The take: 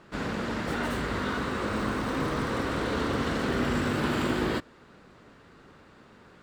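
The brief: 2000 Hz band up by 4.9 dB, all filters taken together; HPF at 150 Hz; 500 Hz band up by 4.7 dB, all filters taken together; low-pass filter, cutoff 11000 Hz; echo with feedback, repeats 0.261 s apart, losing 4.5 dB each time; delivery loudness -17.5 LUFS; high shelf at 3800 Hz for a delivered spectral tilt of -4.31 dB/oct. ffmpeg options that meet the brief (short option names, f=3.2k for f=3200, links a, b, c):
-af "highpass=150,lowpass=11k,equalizer=f=500:t=o:g=5.5,equalizer=f=2k:t=o:g=4.5,highshelf=f=3.8k:g=7,aecho=1:1:261|522|783|1044|1305|1566|1827|2088|2349:0.596|0.357|0.214|0.129|0.0772|0.0463|0.0278|0.0167|0.01,volume=7.5dB"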